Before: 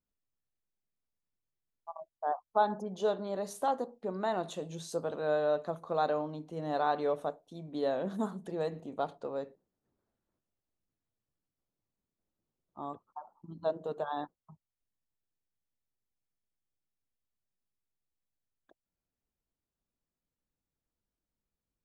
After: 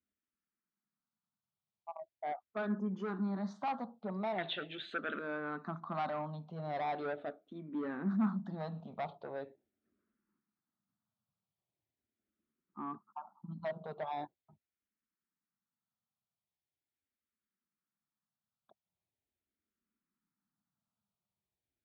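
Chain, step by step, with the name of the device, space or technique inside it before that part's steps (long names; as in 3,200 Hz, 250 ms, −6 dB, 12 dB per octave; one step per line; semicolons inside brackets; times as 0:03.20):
barber-pole phaser into a guitar amplifier (frequency shifter mixed with the dry sound −0.41 Hz; soft clipping −33 dBFS, distortion −10 dB; loudspeaker in its box 97–3,800 Hz, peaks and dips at 210 Hz +8 dB, 490 Hz −10 dB, 1,300 Hz +5 dB, 2,800 Hz −5 dB)
0:04.38–0:05.19: flat-topped bell 2,200 Hz +13.5 dB
level +2 dB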